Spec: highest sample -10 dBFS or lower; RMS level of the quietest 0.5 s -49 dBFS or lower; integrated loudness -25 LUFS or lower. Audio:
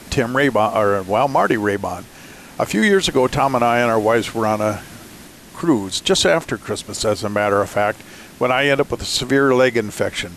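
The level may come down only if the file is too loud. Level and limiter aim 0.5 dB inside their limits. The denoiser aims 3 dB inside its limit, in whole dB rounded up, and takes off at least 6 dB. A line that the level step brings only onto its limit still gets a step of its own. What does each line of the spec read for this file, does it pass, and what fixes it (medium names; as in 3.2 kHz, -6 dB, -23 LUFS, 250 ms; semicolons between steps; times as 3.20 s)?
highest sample -4.5 dBFS: fail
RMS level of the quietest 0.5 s -40 dBFS: fail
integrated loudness -18.0 LUFS: fail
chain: noise reduction 6 dB, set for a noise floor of -40 dBFS; trim -7.5 dB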